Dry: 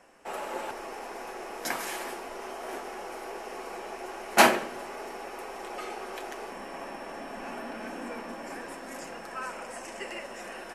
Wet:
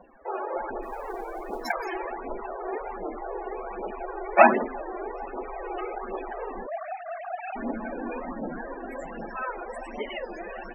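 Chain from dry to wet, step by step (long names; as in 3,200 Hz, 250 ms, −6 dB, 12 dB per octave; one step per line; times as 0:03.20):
0:06.68–0:07.56: three sine waves on the formant tracks
phase shifter 1.3 Hz, delay 2.9 ms, feedback 46%
spectral peaks only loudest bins 32
0:00.82–0:01.72: noise that follows the level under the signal 28 dB
low-shelf EQ 220 Hz +9.5 dB
wow of a warped record 33 1/3 rpm, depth 160 cents
level +3 dB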